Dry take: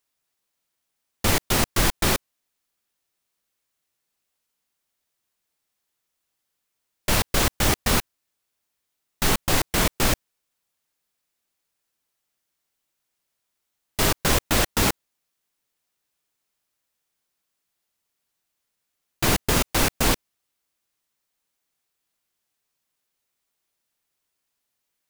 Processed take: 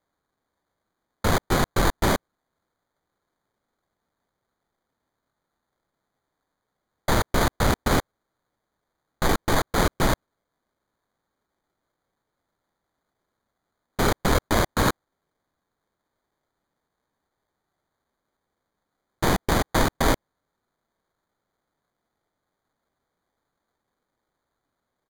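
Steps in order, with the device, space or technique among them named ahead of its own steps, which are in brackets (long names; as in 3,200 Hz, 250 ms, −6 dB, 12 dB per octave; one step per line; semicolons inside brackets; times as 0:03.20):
crushed at another speed (tape speed factor 1.25×; decimation without filtering 13×; tape speed factor 0.8×)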